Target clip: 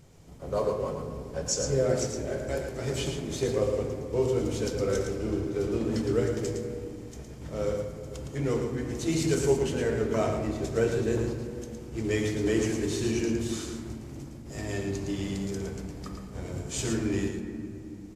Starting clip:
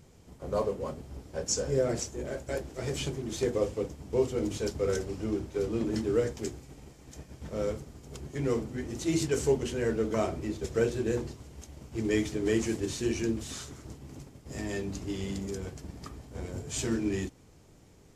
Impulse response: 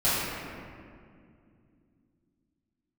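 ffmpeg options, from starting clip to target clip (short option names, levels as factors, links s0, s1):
-filter_complex "[0:a]aecho=1:1:112:0.501,asplit=2[s0][s1];[1:a]atrim=start_sample=2205,asetrate=41013,aresample=44100[s2];[s1][s2]afir=irnorm=-1:irlink=0,volume=0.0944[s3];[s0][s3]amix=inputs=2:normalize=0"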